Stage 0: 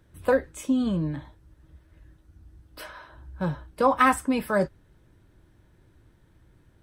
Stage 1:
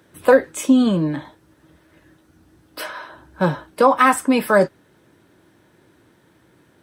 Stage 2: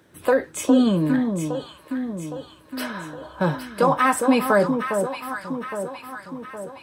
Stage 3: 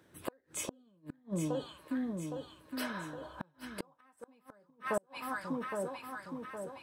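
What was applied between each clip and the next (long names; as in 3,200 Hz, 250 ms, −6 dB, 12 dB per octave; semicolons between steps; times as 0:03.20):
high-pass filter 220 Hz 12 dB per octave; in parallel at −2 dB: brickwall limiter −17 dBFS, peak gain reduction 9.5 dB; on the sum: speech leveller 0.5 s; level +6 dB
brickwall limiter −8 dBFS, peak gain reduction 6 dB; delay that swaps between a low-pass and a high-pass 407 ms, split 1,100 Hz, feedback 72%, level −5 dB; level −1.5 dB
gate with flip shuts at −14 dBFS, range −39 dB; level −8 dB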